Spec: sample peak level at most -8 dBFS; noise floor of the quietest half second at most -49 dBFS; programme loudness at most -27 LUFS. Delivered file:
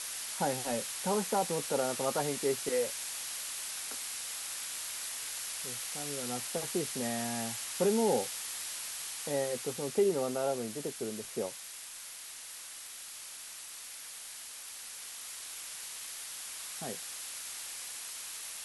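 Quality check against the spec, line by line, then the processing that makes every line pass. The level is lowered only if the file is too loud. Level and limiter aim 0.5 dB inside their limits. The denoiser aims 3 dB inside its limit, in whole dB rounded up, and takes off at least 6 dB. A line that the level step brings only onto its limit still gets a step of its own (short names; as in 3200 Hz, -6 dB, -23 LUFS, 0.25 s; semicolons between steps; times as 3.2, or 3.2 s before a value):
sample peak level -17.5 dBFS: OK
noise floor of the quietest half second -46 dBFS: fail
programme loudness -35.0 LUFS: OK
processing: denoiser 6 dB, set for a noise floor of -46 dBFS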